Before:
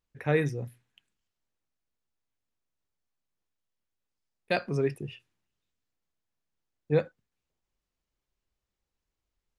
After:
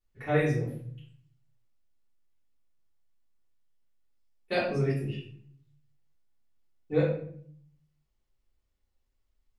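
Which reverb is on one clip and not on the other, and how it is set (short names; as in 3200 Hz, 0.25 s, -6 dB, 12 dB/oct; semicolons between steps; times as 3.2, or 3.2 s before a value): shoebox room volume 81 m³, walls mixed, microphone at 3.4 m; gain -12 dB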